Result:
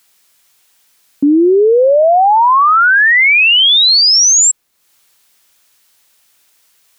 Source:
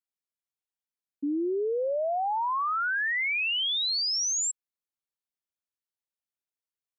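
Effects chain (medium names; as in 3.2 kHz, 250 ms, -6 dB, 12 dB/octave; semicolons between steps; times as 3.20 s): 2.02–4.02 s: treble shelf 2.1 kHz -11 dB; loudness maximiser +34.5 dB; tape noise reduction on one side only encoder only; trim -4.5 dB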